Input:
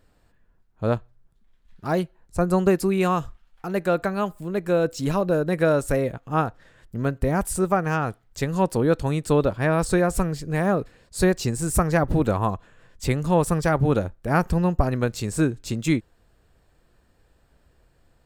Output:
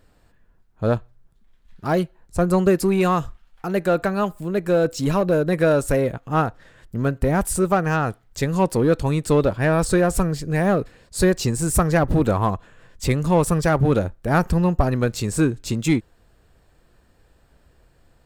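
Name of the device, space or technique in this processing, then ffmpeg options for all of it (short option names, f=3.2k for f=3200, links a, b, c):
parallel distortion: -filter_complex "[0:a]asplit=2[a][b];[b]asoftclip=type=hard:threshold=-21dB,volume=-5dB[c];[a][c]amix=inputs=2:normalize=0"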